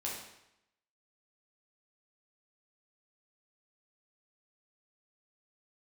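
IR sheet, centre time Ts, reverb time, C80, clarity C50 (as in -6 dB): 53 ms, 0.85 s, 5.5 dB, 2.0 dB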